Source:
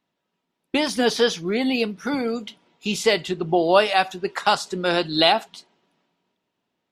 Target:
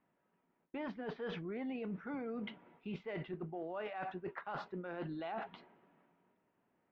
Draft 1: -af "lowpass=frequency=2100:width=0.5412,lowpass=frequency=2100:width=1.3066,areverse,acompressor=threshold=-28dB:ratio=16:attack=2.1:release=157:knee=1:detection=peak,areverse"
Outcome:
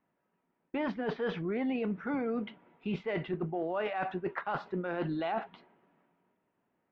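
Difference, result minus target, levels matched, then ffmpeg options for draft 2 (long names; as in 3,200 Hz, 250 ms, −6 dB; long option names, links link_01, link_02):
downward compressor: peak gain reduction −9 dB
-af "lowpass=frequency=2100:width=0.5412,lowpass=frequency=2100:width=1.3066,areverse,acompressor=threshold=-37.5dB:ratio=16:attack=2.1:release=157:knee=1:detection=peak,areverse"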